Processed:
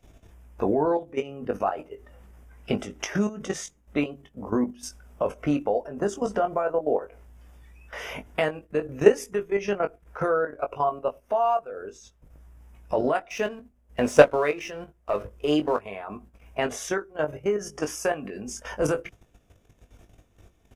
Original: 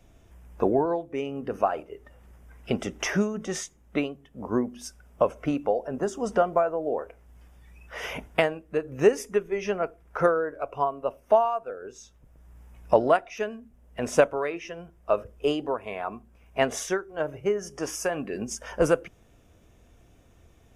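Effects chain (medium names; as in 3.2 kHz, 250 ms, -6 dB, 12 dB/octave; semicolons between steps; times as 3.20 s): 13.29–15.79 s: waveshaping leveller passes 1; level held to a coarse grid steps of 14 dB; doubling 20 ms -7 dB; trim +5 dB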